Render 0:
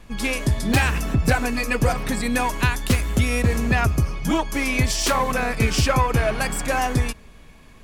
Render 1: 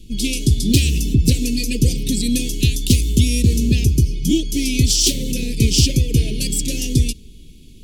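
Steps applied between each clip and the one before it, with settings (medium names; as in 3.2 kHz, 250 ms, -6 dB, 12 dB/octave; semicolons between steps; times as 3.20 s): elliptic band-stop 370–3100 Hz, stop band 60 dB; dynamic bell 5.7 kHz, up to +4 dB, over -42 dBFS, Q 1; trim +6 dB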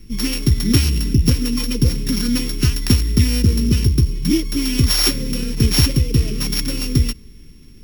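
sorted samples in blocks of 8 samples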